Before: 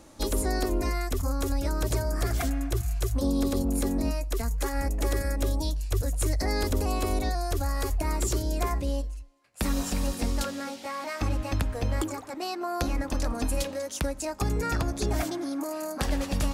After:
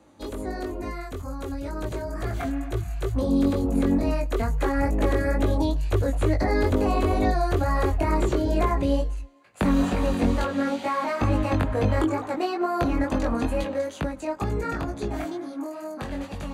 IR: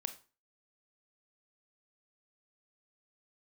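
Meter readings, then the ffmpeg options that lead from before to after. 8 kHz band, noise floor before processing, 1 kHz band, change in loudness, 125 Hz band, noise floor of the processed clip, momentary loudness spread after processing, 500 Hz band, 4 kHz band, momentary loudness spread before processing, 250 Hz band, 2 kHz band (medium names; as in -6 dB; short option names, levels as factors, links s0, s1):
-10.0 dB, -42 dBFS, +5.5 dB, +4.0 dB, +2.5 dB, -39 dBFS, 11 LU, +6.0 dB, -3.0 dB, 5 LU, +6.0 dB, +3.5 dB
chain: -filter_complex "[0:a]dynaudnorm=f=420:g=17:m=7.08,highpass=76,acrossover=split=190|1700|3900[s0][s1][s2][s3];[s0]acompressor=threshold=0.0891:ratio=4[s4];[s1]acompressor=threshold=0.112:ratio=4[s5];[s2]acompressor=threshold=0.0178:ratio=4[s6];[s3]acompressor=threshold=0.0141:ratio=4[s7];[s4][s5][s6][s7]amix=inputs=4:normalize=0,highshelf=f=5200:g=-12,bandreject=f=5300:w=5.2,flanger=delay=19:depth=3.3:speed=2.2"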